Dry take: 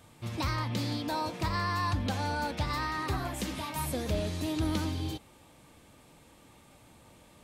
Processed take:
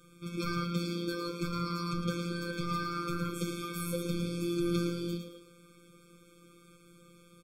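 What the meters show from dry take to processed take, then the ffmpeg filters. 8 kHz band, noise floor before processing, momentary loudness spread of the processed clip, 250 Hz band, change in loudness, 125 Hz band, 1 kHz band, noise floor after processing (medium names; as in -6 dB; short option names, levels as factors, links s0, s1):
-3.0 dB, -58 dBFS, 5 LU, +1.0 dB, -2.0 dB, -3.0 dB, -6.0 dB, -60 dBFS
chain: -filter_complex "[0:a]asplit=5[s0][s1][s2][s3][s4];[s1]adelay=110,afreqshift=89,volume=0.447[s5];[s2]adelay=220,afreqshift=178,volume=0.17[s6];[s3]adelay=330,afreqshift=267,volume=0.0646[s7];[s4]adelay=440,afreqshift=356,volume=0.0245[s8];[s0][s5][s6][s7][s8]amix=inputs=5:normalize=0,afftfilt=real='hypot(re,im)*cos(PI*b)':imag='0':win_size=1024:overlap=0.75,afftfilt=real='re*eq(mod(floor(b*sr/1024/520),2),0)':imag='im*eq(mod(floor(b*sr/1024/520),2),0)':win_size=1024:overlap=0.75,volume=1.41"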